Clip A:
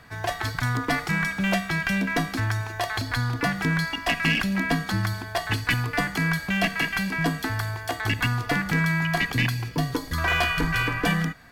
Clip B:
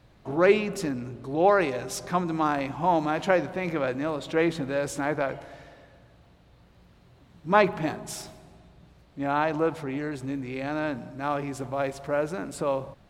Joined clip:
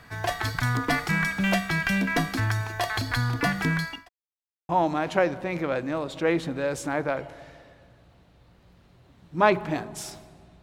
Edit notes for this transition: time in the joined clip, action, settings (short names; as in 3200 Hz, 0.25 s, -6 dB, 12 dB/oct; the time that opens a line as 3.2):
clip A
3.51–4.09 fade out equal-power
4.09–4.69 mute
4.69 switch to clip B from 2.81 s